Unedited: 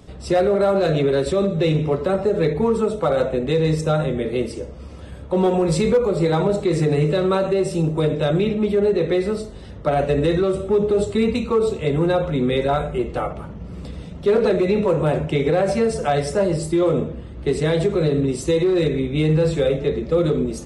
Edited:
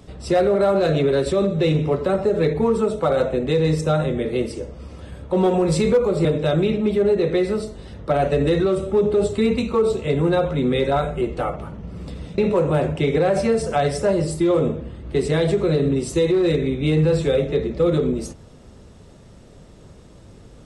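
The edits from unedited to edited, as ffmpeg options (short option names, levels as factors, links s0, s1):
-filter_complex "[0:a]asplit=3[s0][s1][s2];[s0]atrim=end=6.252[s3];[s1]atrim=start=8.018:end=14.152[s4];[s2]atrim=start=14.698[s5];[s3][s4]acrossfade=d=0.004:c1=hsin:c2=hsin[s6];[s6][s5]acrossfade=d=0.004:c1=hsin:c2=hsin"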